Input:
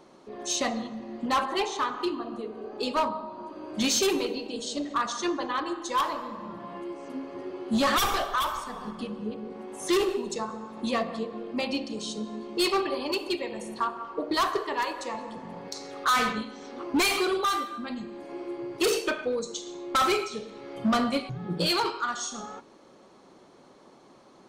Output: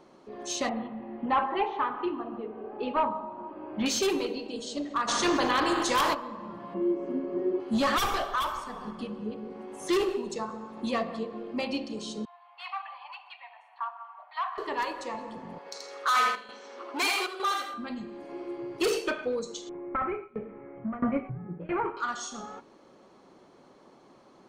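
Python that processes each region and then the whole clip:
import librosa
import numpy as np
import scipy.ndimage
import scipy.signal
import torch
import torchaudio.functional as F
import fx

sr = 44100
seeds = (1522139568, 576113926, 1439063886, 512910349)

y = fx.chain(x, sr, fx.lowpass(hz=2800.0, slope=24),
    fx.peak_eq(hz=840.0, db=7.5, octaves=0.21), at=(0.69, 3.86))
y = fx.spec_flatten(y, sr, power=0.69, at=(5.07, 6.13), fade=0.02)
y = fx.env_flatten(y, sr, amount_pct=70, at=(5.07, 6.13), fade=0.02)
y = fx.chain(y, sr, fx.lowpass(hz=1400.0, slope=6),
    fx.peak_eq(hz=280.0, db=12.5, octaves=1.0),
    fx.comb(ms=5.4, depth=0.71), at=(6.74, 7.6))
y = fx.chain(y, sr, fx.cheby_ripple_highpass(hz=700.0, ripple_db=3),
    fx.air_absorb(metres=500.0), at=(12.25, 14.58))
y = fx.chain(y, sr, fx.highpass(hz=580.0, slope=12),
    fx.echo_feedback(ms=81, feedback_pct=22, wet_db=-3.5),
    fx.chopper(hz=1.1, depth_pct=60, duty_pct=85), at=(15.58, 17.74))
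y = fx.chain(y, sr, fx.ellip_lowpass(hz=2200.0, order=4, stop_db=60),
    fx.low_shelf(hz=300.0, db=7.5),
    fx.tremolo_shape(shape='saw_down', hz=1.5, depth_pct=90), at=(19.69, 21.97))
y = fx.high_shelf(y, sr, hz=5300.0, db=-6.0)
y = fx.notch(y, sr, hz=3700.0, q=30.0)
y = y * librosa.db_to_amplitude(-1.5)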